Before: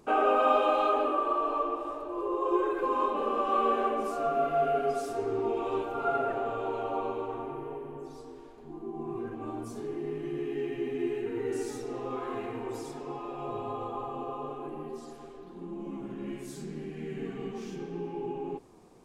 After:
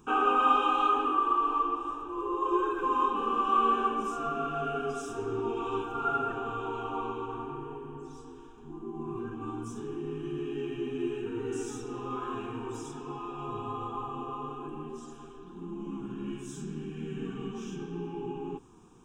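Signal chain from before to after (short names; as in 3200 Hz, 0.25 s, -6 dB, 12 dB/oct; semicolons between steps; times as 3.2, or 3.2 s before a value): fixed phaser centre 3000 Hz, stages 8; gain +3.5 dB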